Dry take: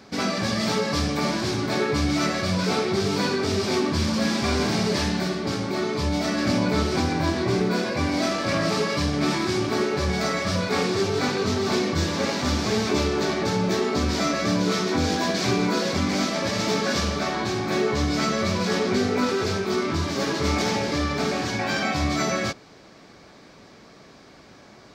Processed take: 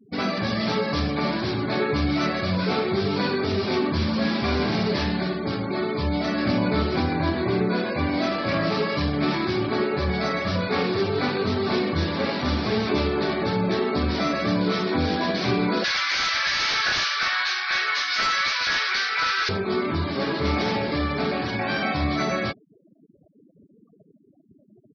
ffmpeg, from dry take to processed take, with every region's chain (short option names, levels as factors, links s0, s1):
-filter_complex "[0:a]asettb=1/sr,asplit=3[s0][s1][s2];[s0]atrim=end=7.364[s3];[s1]atrim=start=7.36:end=8.33,asetpts=PTS-STARTPTS,afade=t=in:d=0.004:c=qsin,afade=t=out:st=0.966:d=0.004:c=qsin,lowpass=7100,bandreject=f=62.04:t=h:w=4,bandreject=f=124.08:t=h:w=4[s4];[s2]atrim=start=8.326[s5];[s3][s4]acrossfade=d=0.004:c1=hsin:c2=qsin[s6];[s6][s5]acrossfade=d=0.004:c1=qsin:c2=hsin,asettb=1/sr,asplit=3[s7][s8][s9];[s7]atrim=end=15.844[s10];[s8]atrim=start=15.84:end=19.49,asetpts=PTS-STARTPTS,afade=t=in:d=0.004:c=qsin,afade=t=out:st=3.646:d=0.004:c=qsin,highpass=f=1500:t=q:w=2.4,highshelf=f=2700:g=12,aeval=exprs='0.158*(abs(mod(val(0)/0.158+3,4)-2)-1)':c=same[s11];[s9]atrim=start=19.486[s12];[s10][s11]acrossfade=d=0.004:c1=hsin:c2=qsin[s13];[s13][s12]acrossfade=d=0.004:c1=qsin:c2=hsin,lowpass=f=4800:w=0.5412,lowpass=f=4800:w=1.3066,afftfilt=real='re*gte(hypot(re,im),0.0178)':imag='im*gte(hypot(re,im),0.0178)':win_size=1024:overlap=0.75"